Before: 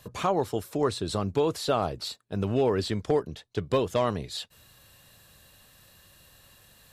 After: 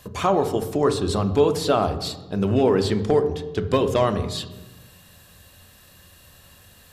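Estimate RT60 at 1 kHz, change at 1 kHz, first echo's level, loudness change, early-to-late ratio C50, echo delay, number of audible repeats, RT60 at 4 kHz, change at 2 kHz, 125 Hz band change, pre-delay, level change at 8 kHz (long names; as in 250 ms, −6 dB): 1.0 s, +5.5 dB, no echo audible, +6.5 dB, 12.0 dB, no echo audible, no echo audible, 0.80 s, +5.5 dB, +6.5 dB, 3 ms, +5.0 dB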